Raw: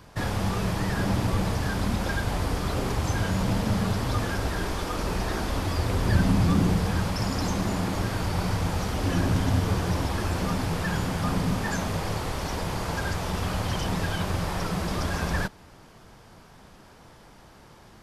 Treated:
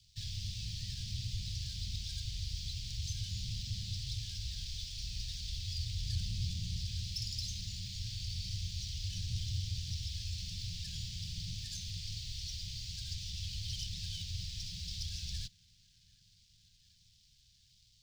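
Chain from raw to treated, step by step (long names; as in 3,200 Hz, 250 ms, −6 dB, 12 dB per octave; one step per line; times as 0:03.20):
three-way crossover with the lows and the highs turned down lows −15 dB, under 530 Hz, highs −20 dB, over 6,300 Hz
dead-zone distortion −58.5 dBFS
parametric band 11,000 Hz −12 dB 1.1 octaves
soft clipping −30 dBFS, distortion −15 dB
inverse Chebyshev band-stop filter 450–1,100 Hz, stop band 80 dB
on a send: delay with a band-pass on its return 745 ms, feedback 68%, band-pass 630 Hz, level −12 dB
on the sum: level +6.5 dB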